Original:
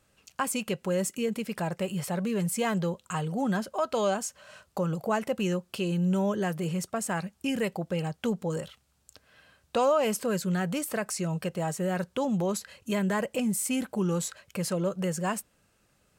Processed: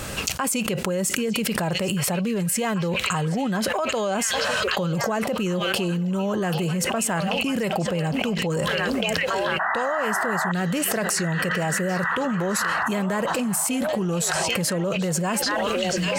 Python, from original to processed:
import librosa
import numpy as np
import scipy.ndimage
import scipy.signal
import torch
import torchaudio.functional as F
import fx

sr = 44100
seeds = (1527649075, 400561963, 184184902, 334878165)

y = fx.spec_paint(x, sr, seeds[0], shape='noise', start_s=9.59, length_s=0.93, low_hz=620.0, high_hz=2000.0, level_db=-26.0)
y = fx.echo_stepped(y, sr, ms=788, hz=3700.0, octaves=-0.7, feedback_pct=70, wet_db=-5.0)
y = fx.env_flatten(y, sr, amount_pct=100)
y = y * 10.0 ** (-4.5 / 20.0)